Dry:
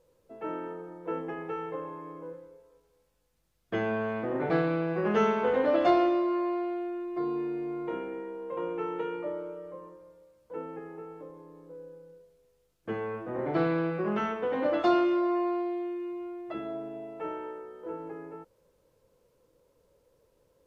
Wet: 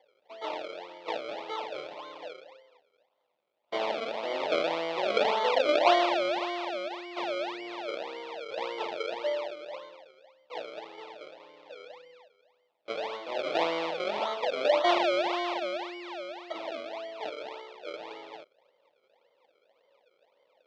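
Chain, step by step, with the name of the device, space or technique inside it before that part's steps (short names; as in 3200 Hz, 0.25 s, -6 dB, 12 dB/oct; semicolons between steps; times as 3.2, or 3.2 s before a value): circuit-bent sampling toy (decimation with a swept rate 33×, swing 100% 1.8 Hz; speaker cabinet 550–4400 Hz, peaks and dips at 600 Hz +9 dB, 890 Hz +6 dB, 1600 Hz -8 dB, 2300 Hz +4 dB, 3500 Hz +4 dB)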